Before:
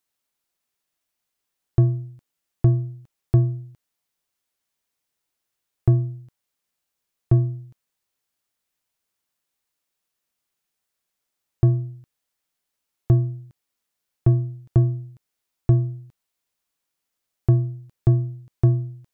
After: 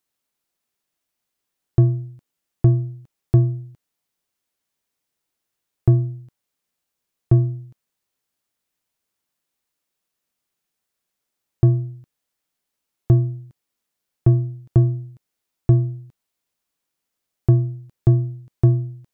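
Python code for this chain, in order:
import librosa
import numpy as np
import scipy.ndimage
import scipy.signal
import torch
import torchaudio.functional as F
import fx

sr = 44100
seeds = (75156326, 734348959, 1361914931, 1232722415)

y = fx.peak_eq(x, sr, hz=240.0, db=3.5, octaves=2.4)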